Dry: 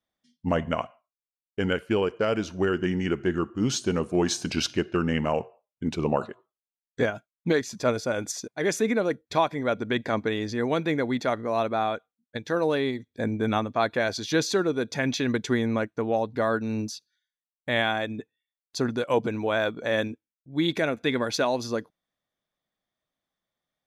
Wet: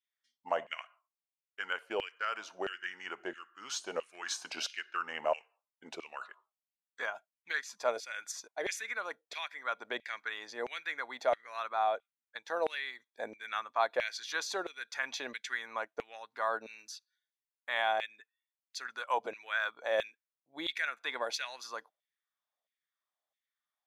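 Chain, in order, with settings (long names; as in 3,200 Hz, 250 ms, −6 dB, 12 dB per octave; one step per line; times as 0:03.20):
auto-filter high-pass saw down 1.5 Hz 570–2,500 Hz
level −8.5 dB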